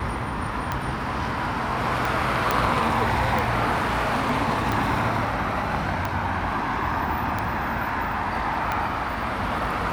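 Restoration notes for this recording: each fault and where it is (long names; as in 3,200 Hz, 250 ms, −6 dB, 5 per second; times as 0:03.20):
scratch tick 45 rpm −12 dBFS
0:02.51: click
0:03.71–0:04.32: clipping −19 dBFS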